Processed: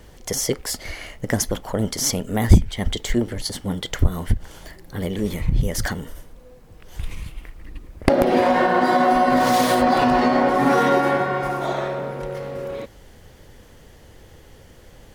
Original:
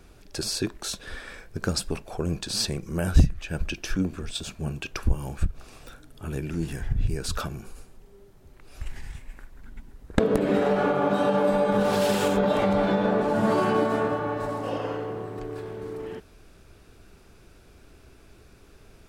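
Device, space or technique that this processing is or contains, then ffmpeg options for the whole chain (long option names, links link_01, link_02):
nightcore: -af "asetrate=55566,aresample=44100,volume=5.5dB"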